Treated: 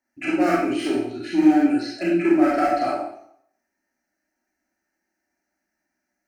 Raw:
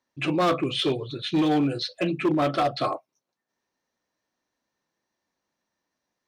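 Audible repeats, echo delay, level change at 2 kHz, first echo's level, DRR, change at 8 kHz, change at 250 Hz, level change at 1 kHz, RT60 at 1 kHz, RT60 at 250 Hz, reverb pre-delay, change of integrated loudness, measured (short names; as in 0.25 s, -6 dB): none, none, +4.5 dB, none, -5.0 dB, n/a, +6.5 dB, +3.0 dB, 0.70 s, 0.60 s, 23 ms, +4.5 dB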